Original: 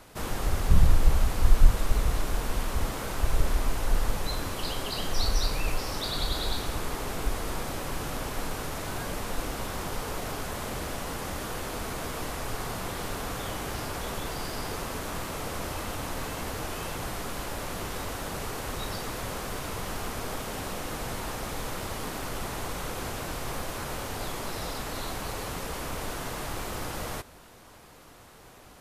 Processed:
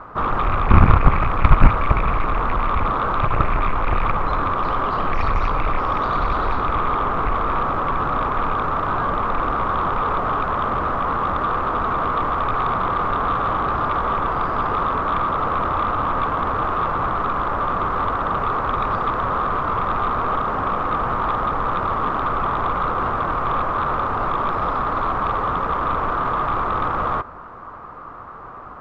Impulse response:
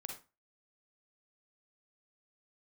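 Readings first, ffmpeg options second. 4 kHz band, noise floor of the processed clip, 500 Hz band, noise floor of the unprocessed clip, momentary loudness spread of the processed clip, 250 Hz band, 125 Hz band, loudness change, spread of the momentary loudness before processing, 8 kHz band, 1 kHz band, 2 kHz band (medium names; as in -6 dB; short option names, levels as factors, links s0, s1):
-3.5 dB, -37 dBFS, +9.5 dB, -51 dBFS, 2 LU, +9.0 dB, +8.5 dB, +11.5 dB, 6 LU, under -20 dB, +18.5 dB, +9.5 dB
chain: -af "lowpass=f=1200:t=q:w=6.3,aeval=exprs='0.596*(cos(1*acos(clip(val(0)/0.596,-1,1)))-cos(1*PI/2))+0.266*(cos(7*acos(clip(val(0)/0.596,-1,1)))-cos(7*PI/2))':c=same,volume=1.33"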